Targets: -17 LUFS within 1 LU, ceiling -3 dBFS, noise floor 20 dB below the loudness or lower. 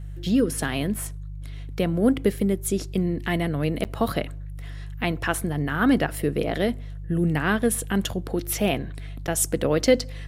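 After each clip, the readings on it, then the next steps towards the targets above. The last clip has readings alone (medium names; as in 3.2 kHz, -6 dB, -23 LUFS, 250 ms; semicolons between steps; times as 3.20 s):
dropouts 2; longest dropout 8.5 ms; hum 50 Hz; highest harmonic 150 Hz; hum level -32 dBFS; loudness -24.5 LUFS; peak level -7.0 dBFS; loudness target -17.0 LUFS
-> interpolate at 3.84/9.27 s, 8.5 ms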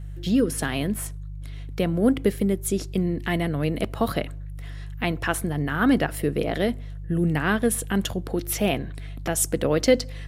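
dropouts 0; hum 50 Hz; highest harmonic 150 Hz; hum level -32 dBFS
-> de-hum 50 Hz, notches 3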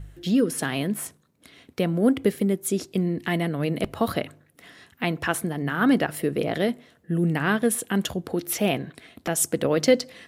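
hum not found; loudness -25.0 LUFS; peak level -7.0 dBFS; loudness target -17.0 LUFS
-> trim +8 dB; peak limiter -3 dBFS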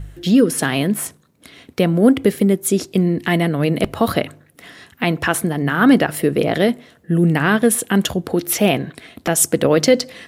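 loudness -17.5 LUFS; peak level -3.0 dBFS; noise floor -54 dBFS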